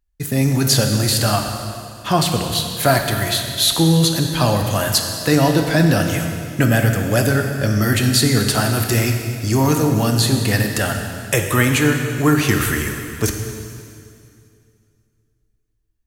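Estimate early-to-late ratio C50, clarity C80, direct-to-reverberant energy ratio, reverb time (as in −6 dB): 4.5 dB, 5.5 dB, 3.5 dB, 2.4 s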